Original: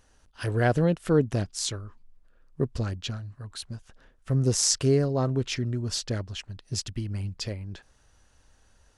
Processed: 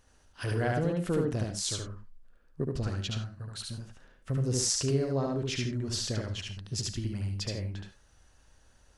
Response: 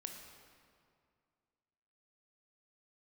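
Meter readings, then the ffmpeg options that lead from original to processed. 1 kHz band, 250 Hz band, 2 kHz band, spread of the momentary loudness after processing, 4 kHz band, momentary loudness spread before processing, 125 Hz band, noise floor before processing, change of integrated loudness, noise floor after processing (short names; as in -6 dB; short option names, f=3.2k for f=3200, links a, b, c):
-4.5 dB, -4.5 dB, -3.5 dB, 12 LU, -2.5 dB, 17 LU, -4.0 dB, -62 dBFS, -4.5 dB, -62 dBFS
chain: -filter_complex "[0:a]acompressor=threshold=-27dB:ratio=2,asplit=2[a][b];[1:a]atrim=start_sample=2205,atrim=end_sample=4410,adelay=73[c];[b][c]afir=irnorm=-1:irlink=0,volume=3dB[d];[a][d]amix=inputs=2:normalize=0,volume=-3dB"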